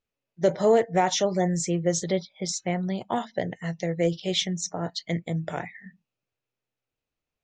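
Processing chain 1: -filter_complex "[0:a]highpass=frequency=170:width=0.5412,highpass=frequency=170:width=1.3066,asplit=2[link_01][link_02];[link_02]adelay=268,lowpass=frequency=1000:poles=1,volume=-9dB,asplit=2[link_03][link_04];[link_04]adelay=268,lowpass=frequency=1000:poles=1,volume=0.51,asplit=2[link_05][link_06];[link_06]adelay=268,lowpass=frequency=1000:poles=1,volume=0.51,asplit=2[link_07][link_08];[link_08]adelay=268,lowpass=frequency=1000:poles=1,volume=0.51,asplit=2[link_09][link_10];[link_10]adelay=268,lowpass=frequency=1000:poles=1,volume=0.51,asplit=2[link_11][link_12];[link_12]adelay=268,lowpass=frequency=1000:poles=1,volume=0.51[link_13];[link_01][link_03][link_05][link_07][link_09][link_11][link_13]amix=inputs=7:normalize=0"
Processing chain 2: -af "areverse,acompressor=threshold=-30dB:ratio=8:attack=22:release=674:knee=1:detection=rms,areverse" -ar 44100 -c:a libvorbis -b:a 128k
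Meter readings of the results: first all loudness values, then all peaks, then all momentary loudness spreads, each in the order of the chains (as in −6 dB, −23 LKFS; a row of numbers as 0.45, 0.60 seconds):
−26.5, −36.5 LKFS; −8.0, −17.0 dBFS; 11, 4 LU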